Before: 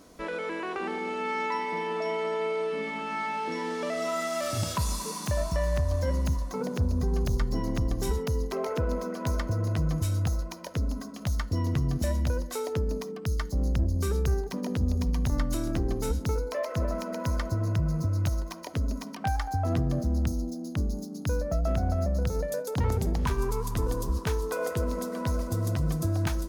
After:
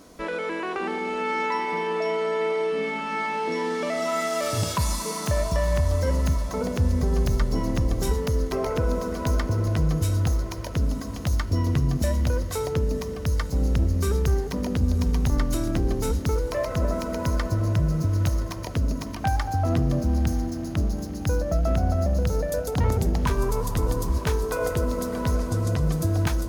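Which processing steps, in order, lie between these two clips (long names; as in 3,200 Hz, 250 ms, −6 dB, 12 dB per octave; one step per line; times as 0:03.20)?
0:25.35–0:25.93: low-pass filter 10,000 Hz
feedback delay with all-pass diffusion 1,001 ms, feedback 62%, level −14 dB
level +4 dB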